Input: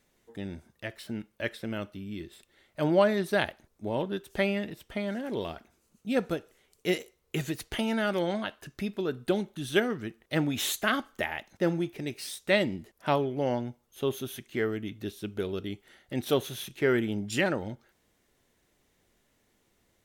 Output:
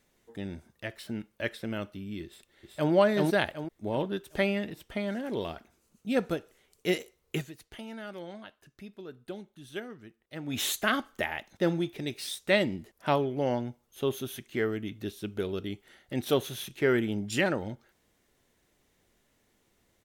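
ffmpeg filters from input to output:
-filter_complex "[0:a]asplit=2[a][b];[b]afade=t=in:st=2.25:d=0.01,afade=t=out:st=2.92:d=0.01,aecho=0:1:380|760|1140|1520|1900:0.891251|0.311938|0.109178|0.0382124|0.0133743[c];[a][c]amix=inputs=2:normalize=0,asettb=1/sr,asplit=3[d][e][f];[d]atrim=end=11.514[g];[e]atrim=start=11.51:end=12.35,asetpts=PTS-STARTPTS,afade=t=in:d=0.004:c=qsin,afade=t=out:st=0.836:d=0.004:c=qsin,equalizer=f=3.6k:t=o:w=0.23:g=7.5[h];[f]atrim=start=12.346[i];[g][h]acrossfade=d=0.004:c1=hsin:c2=qsin[j];[j][i]acrossfade=d=0.004:c1=qsin:c2=hsin,asplit=3[k][l][m];[k]atrim=end=7.5,asetpts=PTS-STARTPTS,afade=t=out:st=7.37:d=0.13:c=qua:silence=0.223872[n];[l]atrim=start=7.5:end=10.41,asetpts=PTS-STARTPTS,volume=-13dB[o];[m]atrim=start=10.41,asetpts=PTS-STARTPTS,afade=t=in:d=0.13:c=qua:silence=0.223872[p];[n][o][p]concat=n=3:v=0:a=1"

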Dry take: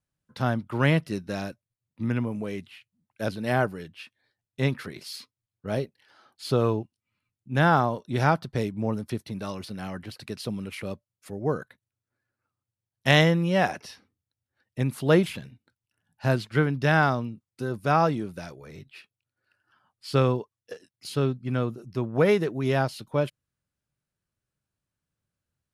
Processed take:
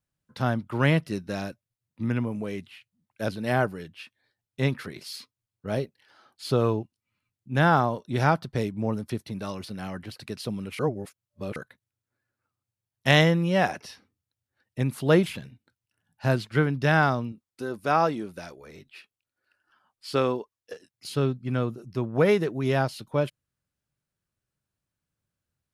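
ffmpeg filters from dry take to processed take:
-filter_complex "[0:a]asettb=1/sr,asplit=3[a][b][c];[a]atrim=end=17.324[d];[b]atrim=start=17.32:end=20.73,asetpts=PTS-STARTPTS,afade=t=in:d=0.004:c=qsin,afade=t=out:st=3.406:d=0.004:c=qsin,equalizer=f=120:w=1.5:g=-11.5[e];[c]atrim=start=20.726[f];[d][e]acrossfade=d=0.004:c1=hsin:c2=qsin[g];[g][f]acrossfade=d=0.004:c1=qsin:c2=hsin,asplit=3[h][i][j];[h]atrim=end=10.792[k];[i]atrim=start=10.788:end=11.562,asetpts=PTS-STARTPTS,areverse[l];[j]atrim=start=11.558[m];[k][l]acrossfade=d=0.004:c1=hsin:c2=hsin[n];[n][m]acrossfade=d=0.004:c1=hsin:c2=hsin"

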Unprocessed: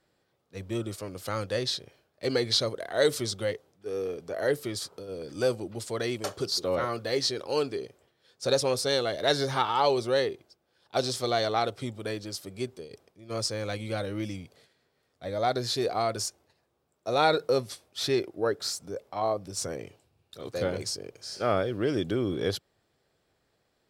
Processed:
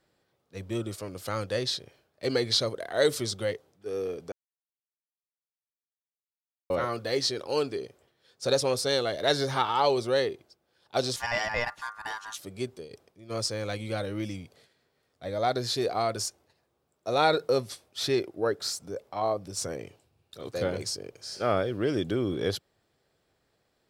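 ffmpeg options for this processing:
-filter_complex "[0:a]asettb=1/sr,asplit=3[a][b][c];[a]atrim=end=11.164[d];[b]atrim=start=11.16:end=12.39,asetpts=PTS-STARTPTS,afade=t=in:d=0.004:c=qsin,afade=t=out:st=1.226:d=0.004:c=qsin,aeval=exprs='val(0)*sin(2*PI*1300*n/s)':c=same[e];[c]atrim=start=12.386[f];[d][e]acrossfade=d=0.004:c1=hsin:c2=qsin[g];[g][f]acrossfade=d=0.004:c1=qsin:c2=hsin,asplit=3[h][i][j];[h]atrim=end=4.32,asetpts=PTS-STARTPTS,afade=t=out:st=4.316:d=0.004:c=hsin[k];[i]atrim=start=4.32:end=6.7,asetpts=PTS-STARTPTS,volume=0[l];[j]atrim=start=6.7,asetpts=PTS-STARTPTS,afade=t=in:d=0.004:c=hsin[m];[k][l][m]concat=n=3:v=0:a=1"

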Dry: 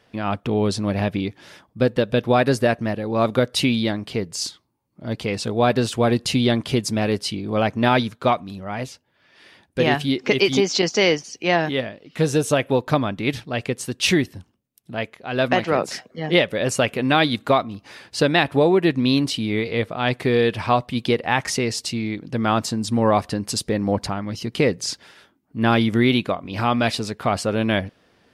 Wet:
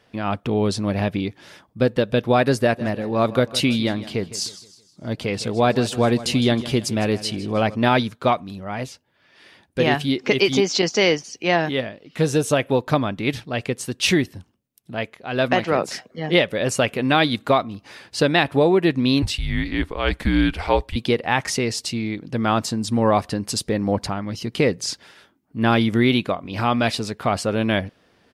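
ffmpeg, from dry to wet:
-filter_complex "[0:a]asplit=3[a][b][c];[a]afade=t=out:st=2.75:d=0.02[d];[b]aecho=1:1:158|316|474|632:0.158|0.0666|0.028|0.0117,afade=t=in:st=2.75:d=0.02,afade=t=out:st=7.74:d=0.02[e];[c]afade=t=in:st=7.74:d=0.02[f];[d][e][f]amix=inputs=3:normalize=0,asettb=1/sr,asplit=3[g][h][i];[g]atrim=end=19.224[j];[h]atrim=start=19.22:end=20.96,asetpts=PTS-STARTPTS,afade=t=in:d=0.004:c=qsin,afade=t=out:st=1.736:d=0.004:c=qsin,afreqshift=-180[k];[i]atrim=start=20.956[l];[j][k]acrossfade=d=0.004:c1=hsin:c2=qsin[m];[m][l]acrossfade=d=0.004:c1=qsin:c2=hsin"

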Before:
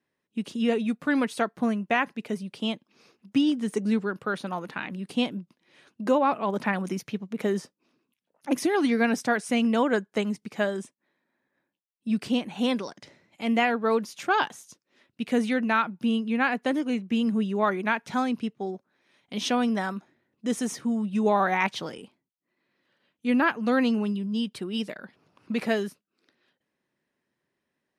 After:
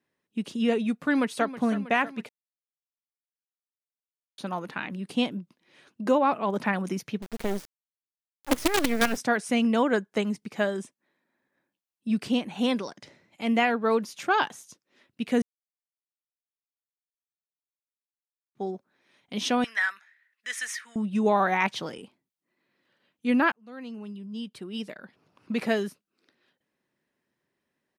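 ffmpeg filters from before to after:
-filter_complex "[0:a]asplit=2[a][b];[b]afade=t=in:st=1.05:d=0.01,afade=t=out:st=1.46:d=0.01,aecho=0:1:320|640|960|1280|1600|1920|2240|2560|2880:0.188365|0.131855|0.0922988|0.0646092|0.0452264|0.0316585|0.0221609|0.0155127|0.0108589[c];[a][c]amix=inputs=2:normalize=0,asettb=1/sr,asplit=3[d][e][f];[d]atrim=end=7.224[g];[e]atrim=start=7.22:end=9.17,asetpts=PTS-STARTPTS,afade=t=in:d=0.004:c=qsin,afade=t=out:st=1.946:d=0.004:c=qsin,acrusher=bits=4:dc=4:mix=0:aa=0.000001[h];[f]atrim=start=9.166[i];[g][h]acrossfade=d=0.004:c1=hsin:c2=qsin[j];[j][i]acrossfade=d=0.004:c1=qsin:c2=hsin,asettb=1/sr,asplit=3[k][l][m];[k]atrim=end=19.644[n];[l]atrim=start=19.64:end=20.96,asetpts=PTS-STARTPTS,afade=t=in:d=0.004:c=qsin,afade=t=out:st=1.316:d=0.004:c=qsin,highpass=f=1.8k:t=q:w=4.4[o];[m]atrim=start=20.956[p];[n][o]acrossfade=d=0.004:c1=hsin:c2=qsin[q];[q][p]acrossfade=d=0.004:c1=qsin:c2=hsin,asplit=6[r][s][t][u][v][w];[r]atrim=end=2.29,asetpts=PTS-STARTPTS,afade=t=out:st=2.286:d=0.004:c=hsin[x];[s]atrim=start=2.29:end=4.38,asetpts=PTS-STARTPTS,volume=0[y];[t]atrim=start=4.38:end=15.42,asetpts=PTS-STARTPTS,afade=t=in:d=0.004:c=hsin,afade=t=out:st=11.036:d=0.004:c=hsin[z];[u]atrim=start=15.42:end=18.55,asetpts=PTS-STARTPTS,volume=0[aa];[v]atrim=start=18.55:end=23.52,asetpts=PTS-STARTPTS,afade=t=in:d=0.004:c=hsin,afade=t=out:st=4.966:d=0.004:c=hsin[ab];[w]atrim=start=23.52,asetpts=PTS-STARTPTS,afade=t=in:d=2.14[ac];[x][y][z][aa][ab][ac]concat=n=6:v=0:a=1"

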